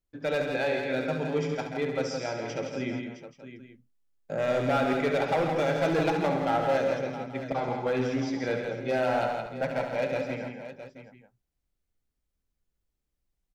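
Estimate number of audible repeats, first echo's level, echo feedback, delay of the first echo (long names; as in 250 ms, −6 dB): 8, −8.0 dB, repeats not evenly spaced, 70 ms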